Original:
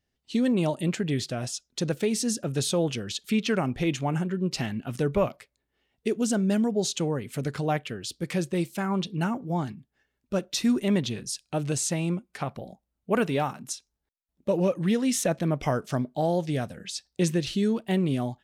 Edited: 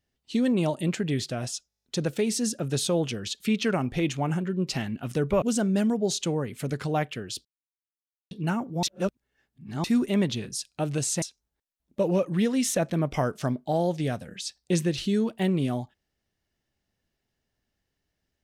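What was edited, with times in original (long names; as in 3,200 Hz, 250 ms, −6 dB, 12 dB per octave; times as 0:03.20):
0:01.68: stutter 0.02 s, 9 plays
0:05.26–0:06.16: remove
0:08.19–0:09.05: silence
0:09.57–0:10.58: reverse
0:11.96–0:13.71: remove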